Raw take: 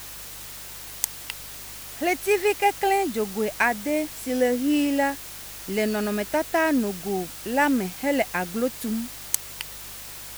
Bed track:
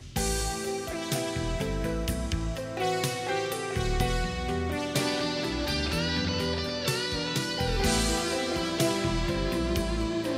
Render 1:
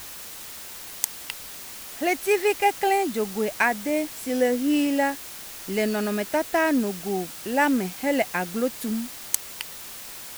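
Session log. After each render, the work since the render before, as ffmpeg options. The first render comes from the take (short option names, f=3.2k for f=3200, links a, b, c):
-af "bandreject=f=50:t=h:w=4,bandreject=f=100:t=h:w=4,bandreject=f=150:t=h:w=4"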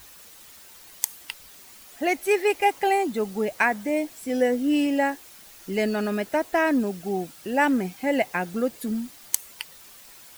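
-af "afftdn=nr=10:nf=-39"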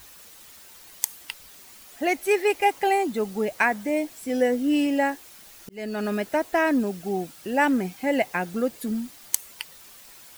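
-filter_complex "[0:a]asplit=2[a][b];[a]atrim=end=5.69,asetpts=PTS-STARTPTS,afade=t=out:st=5.686:d=0.004:c=hsin[c];[b]atrim=start=5.69,asetpts=PTS-STARTPTS,afade=t=in:d=0.4[d];[c][d]concat=n=2:v=0:a=1"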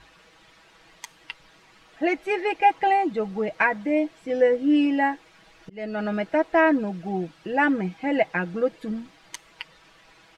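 -af "lowpass=2.9k,aecho=1:1:6.2:0.65"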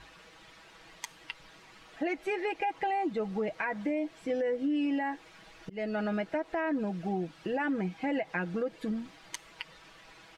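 -af "alimiter=limit=-18.5dB:level=0:latency=1:release=77,acompressor=threshold=-32dB:ratio=2"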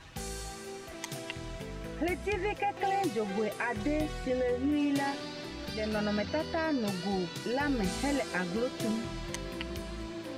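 -filter_complex "[1:a]volume=-11dB[a];[0:a][a]amix=inputs=2:normalize=0"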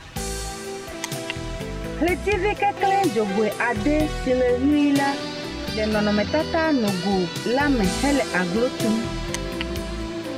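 -af "volume=10.5dB"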